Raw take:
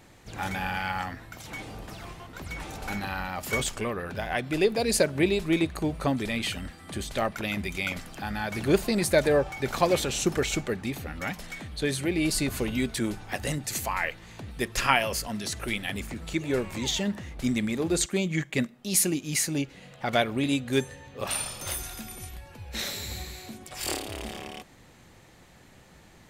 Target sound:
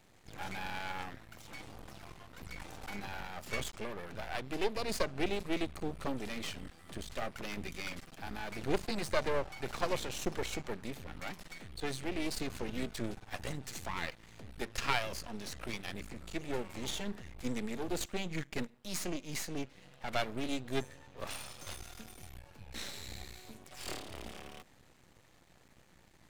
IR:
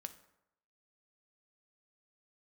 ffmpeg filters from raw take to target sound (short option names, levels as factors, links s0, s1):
-filter_complex "[0:a]acrossover=split=280|1200|7800[s0][s1][s2][s3];[s3]acompressor=threshold=0.00251:ratio=6[s4];[s0][s1][s2][s4]amix=inputs=4:normalize=0,aeval=exprs='max(val(0),0)':c=same,volume=0.531"